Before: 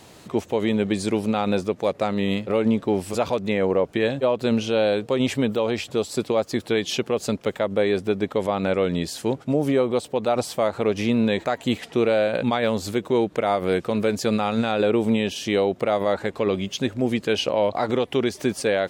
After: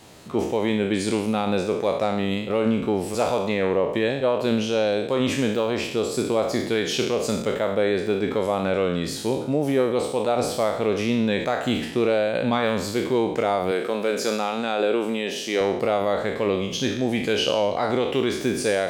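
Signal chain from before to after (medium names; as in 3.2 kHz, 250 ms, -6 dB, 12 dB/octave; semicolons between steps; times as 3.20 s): spectral sustain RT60 0.77 s; 13.71–15.61 s: high-pass 290 Hz 12 dB/octave; trim -2 dB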